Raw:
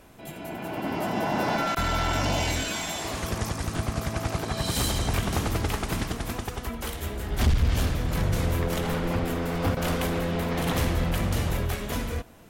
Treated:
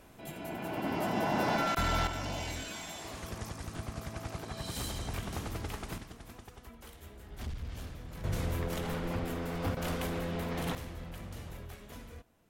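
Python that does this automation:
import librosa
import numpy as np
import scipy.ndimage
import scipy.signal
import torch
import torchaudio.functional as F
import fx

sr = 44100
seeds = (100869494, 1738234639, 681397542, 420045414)

y = fx.gain(x, sr, db=fx.steps((0.0, -4.0), (2.07, -11.5), (5.98, -18.0), (8.24, -8.0), (10.75, -18.0)))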